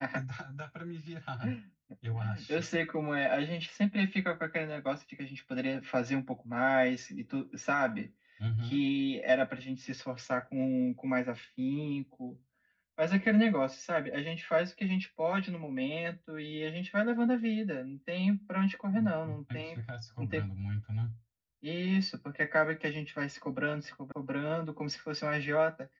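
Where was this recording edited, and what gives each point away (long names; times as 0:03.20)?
0:24.12: cut off before it has died away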